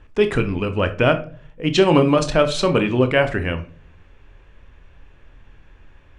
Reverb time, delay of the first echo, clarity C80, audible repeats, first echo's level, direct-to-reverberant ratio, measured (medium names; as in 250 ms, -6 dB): 0.40 s, no echo, 19.5 dB, no echo, no echo, 8.0 dB